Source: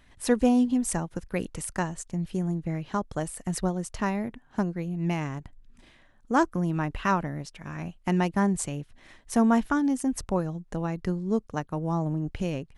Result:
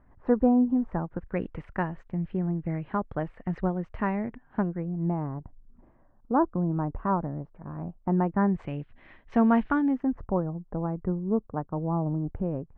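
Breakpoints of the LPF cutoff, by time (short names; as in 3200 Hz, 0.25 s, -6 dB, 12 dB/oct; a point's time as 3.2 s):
LPF 24 dB/oct
0.81 s 1300 Hz
1.46 s 2200 Hz
4.59 s 2200 Hz
5.09 s 1100 Hz
8.09 s 1100 Hz
8.76 s 2700 Hz
9.78 s 2700 Hz
10.29 s 1200 Hz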